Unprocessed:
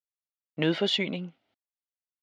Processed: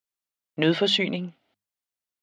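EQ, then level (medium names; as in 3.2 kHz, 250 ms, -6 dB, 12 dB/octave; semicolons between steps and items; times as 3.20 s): hum notches 50/100/150/200 Hz; +4.5 dB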